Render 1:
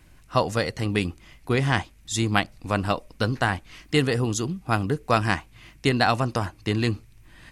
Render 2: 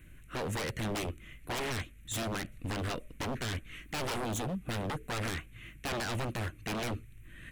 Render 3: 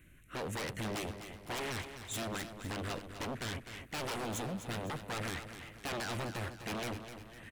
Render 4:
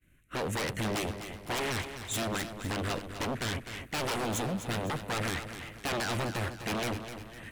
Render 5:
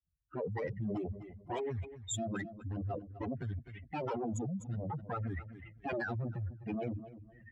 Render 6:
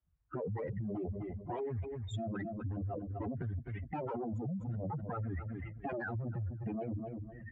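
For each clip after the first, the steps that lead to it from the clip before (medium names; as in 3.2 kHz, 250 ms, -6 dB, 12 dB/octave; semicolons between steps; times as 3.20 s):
peak limiter -13.5 dBFS, peak gain reduction 10.5 dB; static phaser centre 2.1 kHz, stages 4; wavefolder -29.5 dBFS
bass shelf 76 Hz -8 dB; feedback delay 253 ms, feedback 46%, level -10 dB; trim -3 dB
expander -51 dBFS; reverse; upward compressor, threshold -54 dBFS; reverse; trim +6 dB
spectral contrast enhancement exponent 3.2; high-pass 47 Hz; three bands expanded up and down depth 40%; trim -3.5 dB
low-pass 1.5 kHz 12 dB/octave; peak limiter -36.5 dBFS, peak gain reduction 9.5 dB; compression, threshold -44 dBFS, peak gain reduction 5.5 dB; trim +9 dB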